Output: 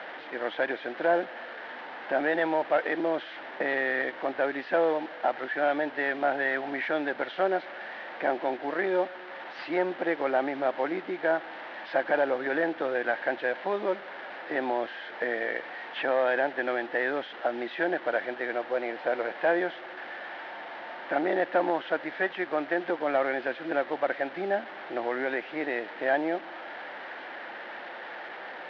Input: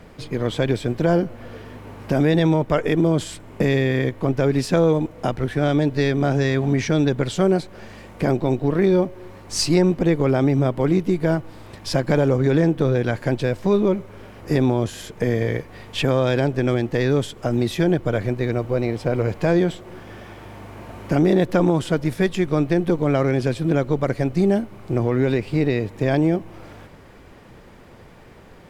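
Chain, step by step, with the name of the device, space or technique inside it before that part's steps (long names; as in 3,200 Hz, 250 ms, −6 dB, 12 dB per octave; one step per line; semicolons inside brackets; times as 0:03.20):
digital answering machine (band-pass filter 370–3,100 Hz; linear delta modulator 32 kbit/s, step −32.5 dBFS; loudspeaker in its box 420–3,000 Hz, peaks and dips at 430 Hz −9 dB, 800 Hz +3 dB, 1,100 Hz −6 dB, 1,700 Hz +6 dB, 2,500 Hz −5 dB)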